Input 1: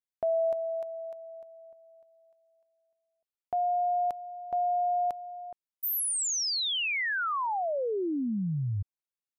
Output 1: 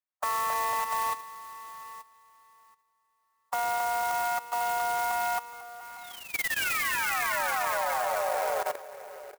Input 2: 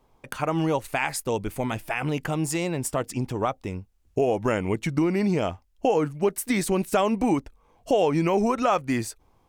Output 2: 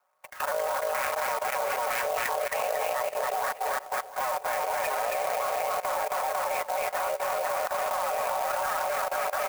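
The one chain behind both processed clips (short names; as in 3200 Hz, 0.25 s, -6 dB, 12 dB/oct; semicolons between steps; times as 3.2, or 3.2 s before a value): cycle switcher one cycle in 3, inverted; spectral noise reduction 6 dB; comb 5.8 ms, depth 81%; mistuned SSB +240 Hz 310–2300 Hz; in parallel at +0.5 dB: compressor 8:1, threshold -30 dBFS; on the sum: soft clip -6.5 dBFS; on a send: bouncing-ball echo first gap 0.27 s, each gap 0.85×, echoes 5; on the sum: level quantiser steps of 15 dB; clock jitter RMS 0.044 ms; gain +1.5 dB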